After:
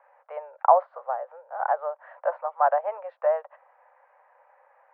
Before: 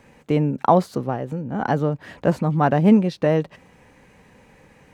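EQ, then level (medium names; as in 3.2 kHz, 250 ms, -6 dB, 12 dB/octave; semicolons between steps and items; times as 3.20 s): steep high-pass 560 Hz 72 dB/octave; low-pass 1.4 kHz 24 dB/octave; 0.0 dB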